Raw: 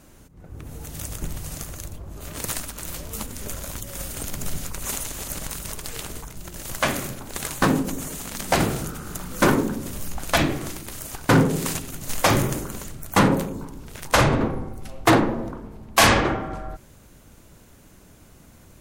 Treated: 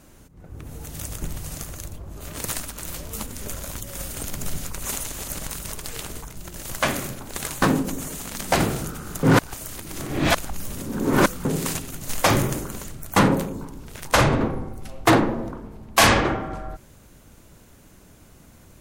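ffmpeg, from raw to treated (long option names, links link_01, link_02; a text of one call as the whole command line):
ffmpeg -i in.wav -filter_complex "[0:a]asplit=3[link_01][link_02][link_03];[link_01]atrim=end=9.232[link_04];[link_02]atrim=start=9.228:end=11.452,asetpts=PTS-STARTPTS,areverse[link_05];[link_03]atrim=start=11.448[link_06];[link_04][link_05]acrossfade=duration=0.004:curve1=hsin:curve2=hsin[link_07];[link_07][link_06]acrossfade=duration=0.004:curve1=hsin:curve2=hsin" out.wav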